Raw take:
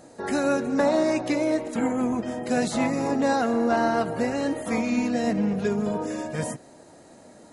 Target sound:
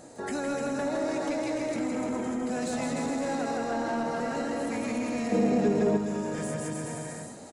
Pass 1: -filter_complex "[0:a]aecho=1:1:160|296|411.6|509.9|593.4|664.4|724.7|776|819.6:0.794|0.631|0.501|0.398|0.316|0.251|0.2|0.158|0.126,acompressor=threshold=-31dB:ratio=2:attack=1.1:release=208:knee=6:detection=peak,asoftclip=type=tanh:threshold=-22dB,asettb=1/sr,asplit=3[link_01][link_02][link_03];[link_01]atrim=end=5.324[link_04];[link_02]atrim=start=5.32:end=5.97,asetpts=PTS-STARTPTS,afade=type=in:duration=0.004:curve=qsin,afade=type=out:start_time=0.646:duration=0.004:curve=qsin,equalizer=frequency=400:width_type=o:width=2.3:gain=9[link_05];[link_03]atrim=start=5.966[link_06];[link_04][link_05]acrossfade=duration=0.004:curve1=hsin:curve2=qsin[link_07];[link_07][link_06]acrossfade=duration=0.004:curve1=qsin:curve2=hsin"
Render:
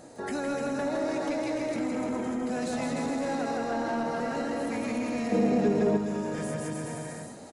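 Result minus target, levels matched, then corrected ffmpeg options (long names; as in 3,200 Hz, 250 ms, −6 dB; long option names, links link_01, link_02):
8,000 Hz band −3.0 dB
-filter_complex "[0:a]aecho=1:1:160|296|411.6|509.9|593.4|664.4|724.7|776|819.6:0.794|0.631|0.501|0.398|0.316|0.251|0.2|0.158|0.126,acompressor=threshold=-31dB:ratio=2:attack=1.1:release=208:knee=6:detection=peak,equalizer=frequency=7600:width_type=o:width=0.43:gain=5,asoftclip=type=tanh:threshold=-22dB,asettb=1/sr,asplit=3[link_01][link_02][link_03];[link_01]atrim=end=5.324[link_04];[link_02]atrim=start=5.32:end=5.97,asetpts=PTS-STARTPTS,afade=type=in:duration=0.004:curve=qsin,afade=type=out:start_time=0.646:duration=0.004:curve=qsin,equalizer=frequency=400:width_type=o:width=2.3:gain=9[link_05];[link_03]atrim=start=5.966[link_06];[link_04][link_05]acrossfade=duration=0.004:curve1=hsin:curve2=qsin[link_07];[link_07][link_06]acrossfade=duration=0.004:curve1=qsin:curve2=hsin"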